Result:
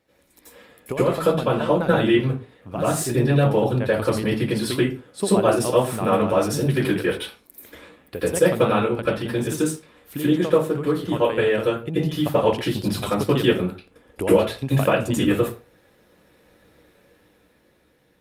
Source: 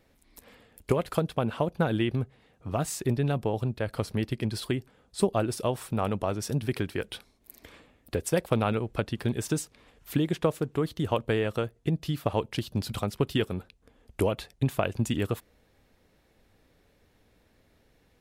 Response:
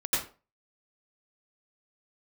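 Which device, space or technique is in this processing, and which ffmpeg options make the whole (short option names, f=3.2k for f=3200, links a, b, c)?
far-field microphone of a smart speaker: -filter_complex "[1:a]atrim=start_sample=2205[a];[0:a][a]afir=irnorm=-1:irlink=0,highpass=f=140:p=1,dynaudnorm=f=190:g=13:m=8dB,volume=-3dB" -ar 48000 -c:a libopus -b:a 48k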